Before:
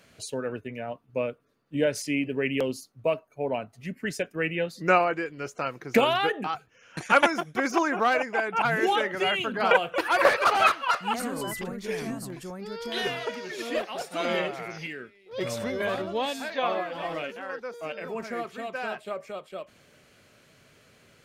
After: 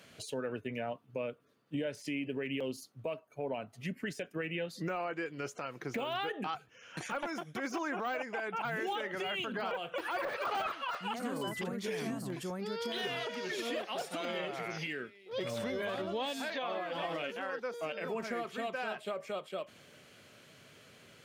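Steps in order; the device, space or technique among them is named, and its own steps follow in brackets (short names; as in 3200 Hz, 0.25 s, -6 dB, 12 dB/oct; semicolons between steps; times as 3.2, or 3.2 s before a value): broadcast voice chain (HPF 90 Hz; de-esser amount 95%; compressor 4:1, threshold -33 dBFS, peak gain reduction 14.5 dB; bell 3200 Hz +4 dB 0.36 oct; limiter -27 dBFS, peak gain reduction 8.5 dB)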